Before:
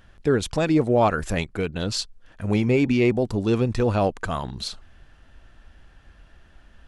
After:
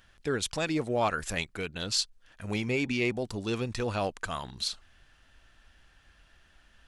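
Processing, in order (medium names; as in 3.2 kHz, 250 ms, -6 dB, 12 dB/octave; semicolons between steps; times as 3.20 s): tilt shelf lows -6 dB, about 1.2 kHz; trim -5.5 dB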